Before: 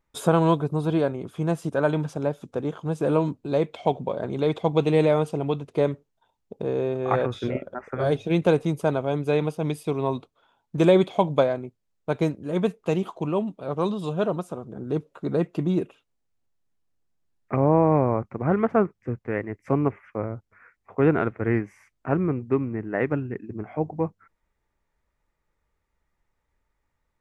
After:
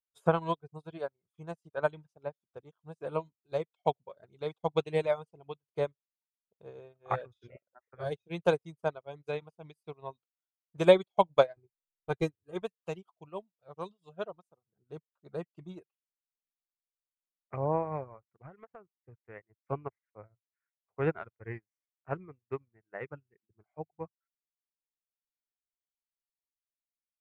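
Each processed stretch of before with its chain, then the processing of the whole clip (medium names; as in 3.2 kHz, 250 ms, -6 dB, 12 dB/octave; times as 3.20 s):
11.56–12.62 s: bass shelf 200 Hz +9.5 dB + comb 2.5 ms, depth 56%
18.20–19.20 s: compression 16:1, threshold -22 dBFS + tape noise reduction on one side only decoder only
whole clip: reverb removal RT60 0.94 s; peaking EQ 260 Hz -12.5 dB 0.85 oct; upward expansion 2.5:1, over -44 dBFS; trim +3 dB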